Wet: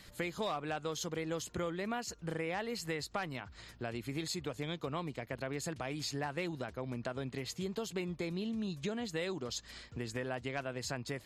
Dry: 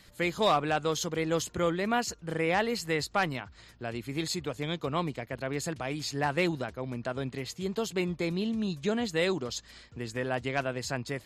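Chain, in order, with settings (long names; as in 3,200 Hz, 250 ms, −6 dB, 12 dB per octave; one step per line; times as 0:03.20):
downward compressor 4 to 1, threshold −37 dBFS, peak gain reduction 13.5 dB
level +1 dB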